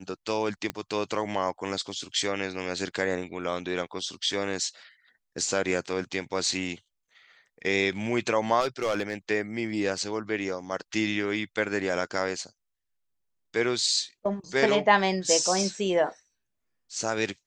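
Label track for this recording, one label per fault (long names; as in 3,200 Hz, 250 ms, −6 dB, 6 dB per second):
0.700000	0.700000	click −15 dBFS
8.600000	9.140000	clipping −21.5 dBFS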